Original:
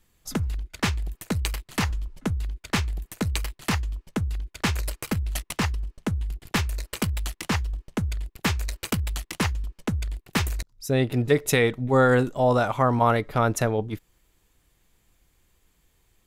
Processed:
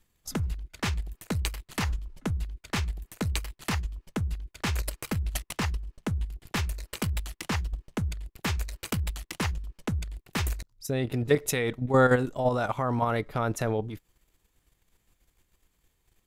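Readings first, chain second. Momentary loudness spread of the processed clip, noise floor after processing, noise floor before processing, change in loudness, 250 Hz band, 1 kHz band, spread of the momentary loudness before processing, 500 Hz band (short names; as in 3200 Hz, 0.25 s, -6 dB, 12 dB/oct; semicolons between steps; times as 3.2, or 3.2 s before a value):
9 LU, -73 dBFS, -69 dBFS, -4.0 dB, -4.5 dB, -5.0 dB, 10 LU, -4.0 dB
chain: level quantiser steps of 9 dB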